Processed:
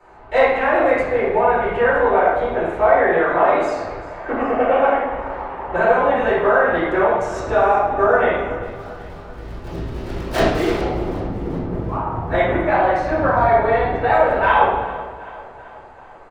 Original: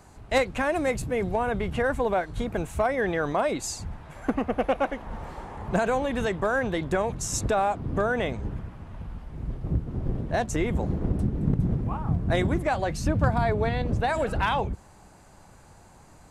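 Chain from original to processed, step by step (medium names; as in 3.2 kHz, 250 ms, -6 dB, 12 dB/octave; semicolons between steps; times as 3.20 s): three-band isolator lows -14 dB, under 380 Hz, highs -16 dB, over 2.6 kHz; 8.62–10.81 s: decimation with a swept rate 37×, swing 160% 3.4 Hz; feedback delay 386 ms, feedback 56%, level -17.5 dB; reverberation RT60 1.3 s, pre-delay 5 ms, DRR -10 dB; trim -4.5 dB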